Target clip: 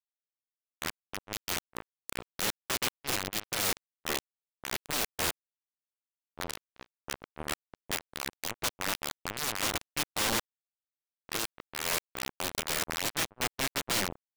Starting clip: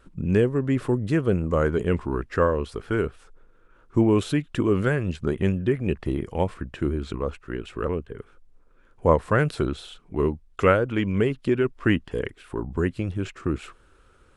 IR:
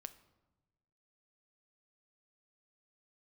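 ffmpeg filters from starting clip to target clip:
-af "areverse,acrusher=bits=2:mix=0:aa=0.5,aeval=exprs='(mod(10.6*val(0)+1,2)-1)/10.6':c=same"

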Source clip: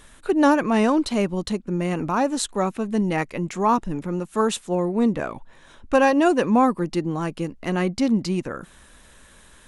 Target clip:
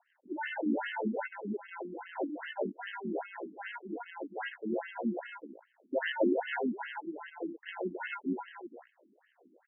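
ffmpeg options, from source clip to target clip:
-filter_complex "[0:a]acrusher=samples=37:mix=1:aa=0.000001,asplit=2[s0][s1];[s1]aecho=0:1:262:0.668[s2];[s0][s2]amix=inputs=2:normalize=0,acrossover=split=1000[s3][s4];[s3]aeval=exprs='val(0)*(1-0.5/2+0.5/2*cos(2*PI*1.9*n/s))':c=same[s5];[s4]aeval=exprs='val(0)*(1-0.5/2-0.5/2*cos(2*PI*1.9*n/s))':c=same[s6];[s5][s6]amix=inputs=2:normalize=0,afftfilt=real='re*between(b*sr/1024,250*pow(2300/250,0.5+0.5*sin(2*PI*2.5*pts/sr))/1.41,250*pow(2300/250,0.5+0.5*sin(2*PI*2.5*pts/sr))*1.41)':imag='im*between(b*sr/1024,250*pow(2300/250,0.5+0.5*sin(2*PI*2.5*pts/sr))/1.41,250*pow(2300/250,0.5+0.5*sin(2*PI*2.5*pts/sr))*1.41)':win_size=1024:overlap=0.75,volume=0.501"

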